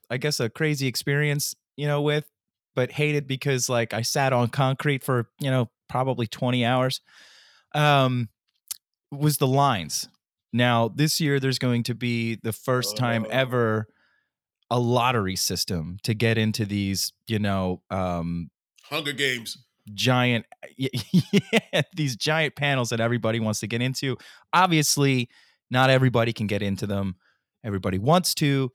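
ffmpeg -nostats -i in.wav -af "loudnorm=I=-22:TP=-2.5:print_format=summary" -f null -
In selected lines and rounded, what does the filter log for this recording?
Input Integrated:    -24.1 LUFS
Input True Peak:      -4.3 dBTP
Input LRA:             3.2 LU
Input Threshold:     -34.5 LUFS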